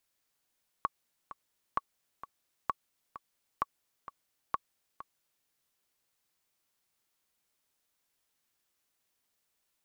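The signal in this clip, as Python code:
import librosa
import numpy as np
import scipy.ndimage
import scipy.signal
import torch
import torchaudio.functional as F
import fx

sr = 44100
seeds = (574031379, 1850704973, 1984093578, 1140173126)

y = fx.click_track(sr, bpm=130, beats=2, bars=5, hz=1120.0, accent_db=14.5, level_db=-15.5)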